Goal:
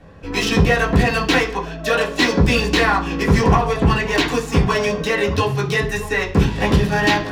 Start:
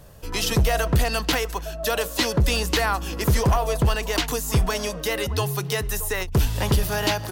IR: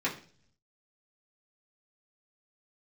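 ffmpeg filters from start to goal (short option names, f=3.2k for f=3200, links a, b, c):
-filter_complex "[0:a]adynamicsmooth=sensitivity=5:basefreq=3.8k[a];[1:a]atrim=start_sample=2205[b];[a][b]afir=irnorm=-1:irlink=0"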